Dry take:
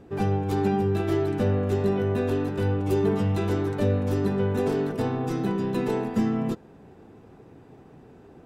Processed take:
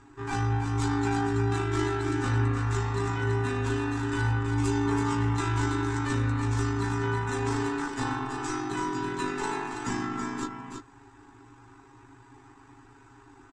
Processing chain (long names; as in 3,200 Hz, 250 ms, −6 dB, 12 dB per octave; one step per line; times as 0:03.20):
drawn EQ curve 110 Hz 0 dB, 160 Hz −22 dB, 310 Hz +1 dB, 580 Hz −24 dB, 880 Hz +7 dB, 1,500 Hz +7 dB, 2,800 Hz +1 dB, 4,700 Hz +4 dB, 7,900 Hz +12 dB, 13,000 Hz −21 dB
time stretch by overlap-add 1.6×, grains 39 ms
single-tap delay 328 ms −6 dB